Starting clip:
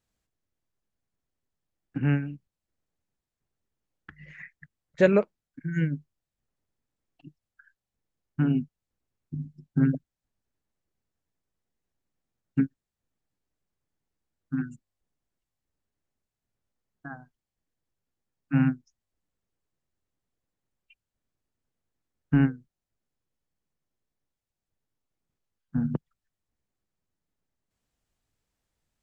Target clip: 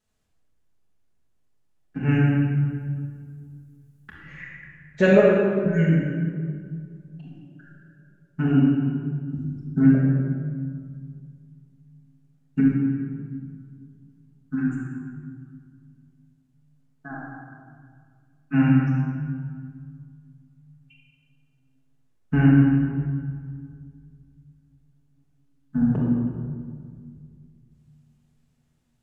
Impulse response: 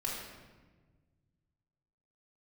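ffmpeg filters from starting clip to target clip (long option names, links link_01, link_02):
-filter_complex "[0:a]asettb=1/sr,asplit=3[link_01][link_02][link_03];[link_01]atrim=end=2.114[link_04];[link_02]atrim=start=2.11:end=4.16,asetpts=PTS-STARTPTS,afade=type=in:duration=0.004:curve=qsin,afade=type=out:start_time=2.046:duration=0.004:curve=qsin,aemphasis=mode=production:type=50fm[link_05];[link_03]atrim=start=4.156[link_06];[link_04][link_05]acrossfade=duration=0.004:curve1=hsin:curve2=qsin[link_07];[link_07][link_06]acrossfade=duration=0.004:curve1=qsin:curve2=hsin[link_08];[1:a]atrim=start_sample=2205,asetrate=26901,aresample=44100[link_09];[link_08][link_09]afir=irnorm=-1:irlink=0"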